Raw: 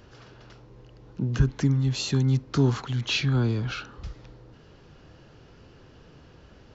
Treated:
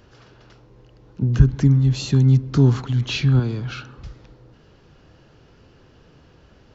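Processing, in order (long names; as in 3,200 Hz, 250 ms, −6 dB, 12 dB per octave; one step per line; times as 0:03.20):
0:01.22–0:03.40: low-shelf EQ 300 Hz +9.5 dB
feedback echo with a low-pass in the loop 130 ms, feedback 65%, low-pass 2,000 Hz, level −21 dB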